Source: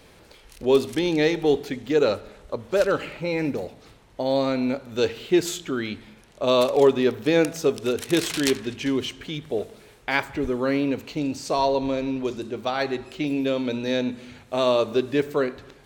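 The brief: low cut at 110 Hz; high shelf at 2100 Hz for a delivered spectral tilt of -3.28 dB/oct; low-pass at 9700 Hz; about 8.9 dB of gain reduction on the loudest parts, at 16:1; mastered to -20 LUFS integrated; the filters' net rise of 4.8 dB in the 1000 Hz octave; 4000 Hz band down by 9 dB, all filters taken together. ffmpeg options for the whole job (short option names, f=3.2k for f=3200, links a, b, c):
-af "highpass=110,lowpass=9.7k,equalizer=f=1k:t=o:g=7.5,highshelf=f=2.1k:g=-6,equalizer=f=4k:t=o:g=-6,acompressor=threshold=-20dB:ratio=16,volume=7.5dB"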